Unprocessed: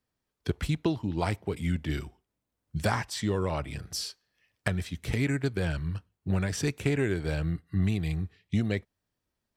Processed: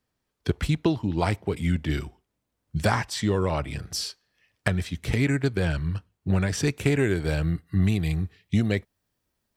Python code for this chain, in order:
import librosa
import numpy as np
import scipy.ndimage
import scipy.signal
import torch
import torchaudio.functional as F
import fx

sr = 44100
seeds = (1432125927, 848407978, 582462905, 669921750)

y = fx.high_shelf(x, sr, hz=9800.0, db=fx.steps((0.0, -3.5), (6.79, 5.5)))
y = F.gain(torch.from_numpy(y), 4.5).numpy()